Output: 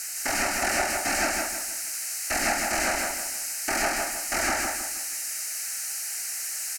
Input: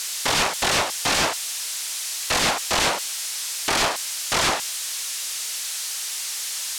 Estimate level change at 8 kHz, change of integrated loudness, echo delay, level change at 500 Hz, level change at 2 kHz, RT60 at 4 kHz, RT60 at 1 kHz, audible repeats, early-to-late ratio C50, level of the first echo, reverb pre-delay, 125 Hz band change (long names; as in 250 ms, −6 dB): −2.5 dB, −3.5 dB, 159 ms, −2.5 dB, −1.5 dB, no reverb audible, no reverb audible, 4, no reverb audible, −3.0 dB, no reverb audible, −8.5 dB